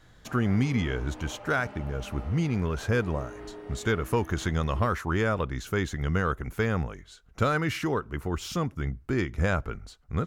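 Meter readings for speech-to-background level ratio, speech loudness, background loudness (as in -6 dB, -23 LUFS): 16.0 dB, -29.0 LUFS, -45.0 LUFS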